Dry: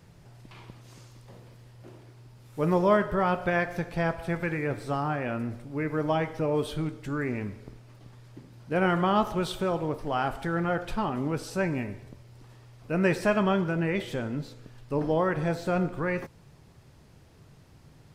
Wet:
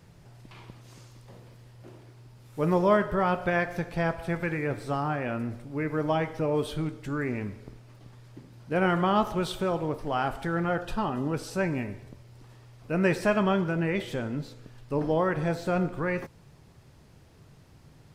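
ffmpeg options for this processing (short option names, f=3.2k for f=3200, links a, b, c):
-filter_complex "[0:a]asettb=1/sr,asplit=3[a][b][c];[a]atrim=end=10.814[d];[b]atrim=start=10.81:end=11.34,asetpts=PTS-STARTPTS,afade=t=in:d=0.004:c=qsin,afade=t=out:st=0.526:d=0.004:c=qsin,asuperstop=centerf=2200:order=12:qfactor=6.1[e];[c]atrim=start=11.336[f];[d][e]acrossfade=d=0.004:c1=hsin:c2=qsin[g];[g][f]acrossfade=d=0.004:c1=qsin:c2=hsin"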